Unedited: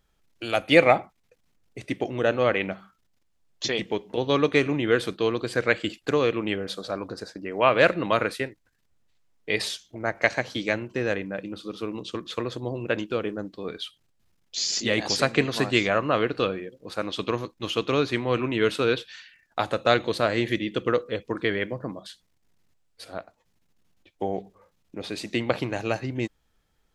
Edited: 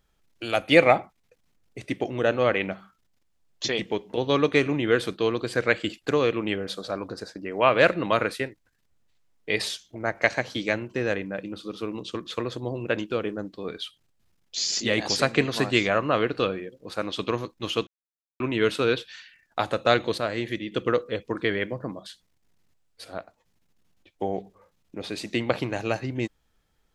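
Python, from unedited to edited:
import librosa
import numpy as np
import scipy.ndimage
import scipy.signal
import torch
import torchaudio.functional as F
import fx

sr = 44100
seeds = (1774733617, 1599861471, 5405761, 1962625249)

y = fx.edit(x, sr, fx.silence(start_s=17.87, length_s=0.53),
    fx.clip_gain(start_s=20.18, length_s=0.54, db=-4.5), tone=tone)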